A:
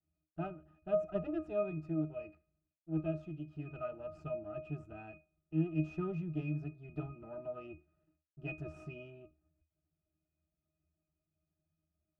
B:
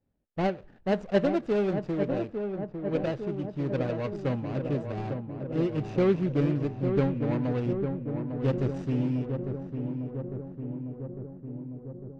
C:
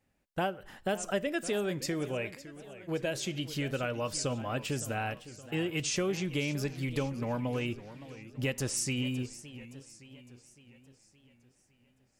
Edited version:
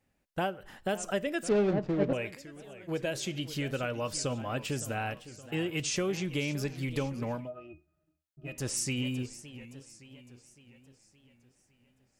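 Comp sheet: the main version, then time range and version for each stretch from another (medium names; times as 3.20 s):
C
1.49–2.13 s: from B
7.40–8.56 s: from A, crossfade 0.24 s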